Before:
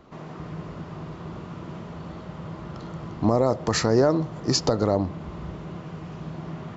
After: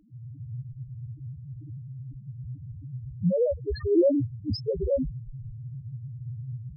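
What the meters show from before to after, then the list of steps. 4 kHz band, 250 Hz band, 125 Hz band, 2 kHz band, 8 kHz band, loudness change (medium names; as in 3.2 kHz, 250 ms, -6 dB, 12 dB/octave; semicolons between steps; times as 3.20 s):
-14.0 dB, -3.0 dB, -2.5 dB, under -15 dB, no reading, -4.0 dB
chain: frequency shift -38 Hz; loudest bins only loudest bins 1; trim +6 dB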